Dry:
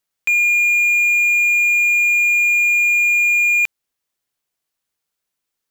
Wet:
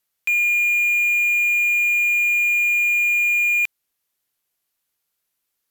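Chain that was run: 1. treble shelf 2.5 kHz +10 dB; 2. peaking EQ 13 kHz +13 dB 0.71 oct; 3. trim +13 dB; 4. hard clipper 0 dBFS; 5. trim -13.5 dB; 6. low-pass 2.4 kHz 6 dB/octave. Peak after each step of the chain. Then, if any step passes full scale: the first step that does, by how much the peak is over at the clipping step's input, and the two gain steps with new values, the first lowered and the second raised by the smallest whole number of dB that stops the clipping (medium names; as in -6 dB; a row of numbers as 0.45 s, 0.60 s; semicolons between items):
-5.5 dBFS, -4.5 dBFS, +8.5 dBFS, 0.0 dBFS, -13.5 dBFS, -14.5 dBFS; step 3, 8.5 dB; step 3 +4 dB, step 5 -4.5 dB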